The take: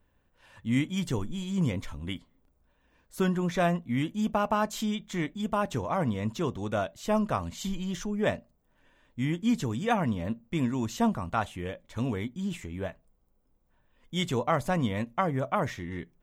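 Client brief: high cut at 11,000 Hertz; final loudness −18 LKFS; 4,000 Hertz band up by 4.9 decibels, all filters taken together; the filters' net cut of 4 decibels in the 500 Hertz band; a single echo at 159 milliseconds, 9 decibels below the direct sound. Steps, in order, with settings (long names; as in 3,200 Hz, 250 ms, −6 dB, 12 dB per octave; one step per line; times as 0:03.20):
low-pass filter 11,000 Hz
parametric band 500 Hz −5.5 dB
parametric band 4,000 Hz +6.5 dB
single-tap delay 159 ms −9 dB
level +12.5 dB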